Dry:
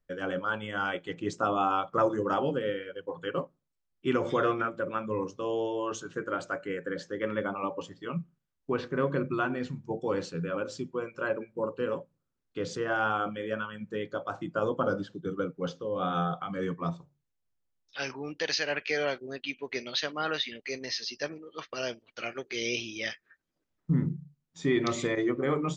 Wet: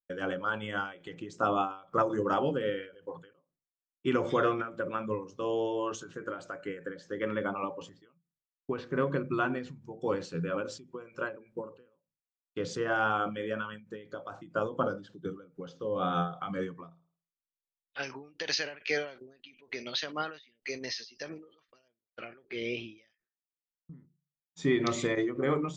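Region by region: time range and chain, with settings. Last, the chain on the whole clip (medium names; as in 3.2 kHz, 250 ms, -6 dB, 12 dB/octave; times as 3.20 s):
16.86–18.03 s: low-pass 3.1 kHz + flutter echo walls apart 9.2 m, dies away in 0.48 s
21.88–22.98 s: distance through air 360 m + tape noise reduction on one side only decoder only
whole clip: expander -48 dBFS; endings held to a fixed fall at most 130 dB/s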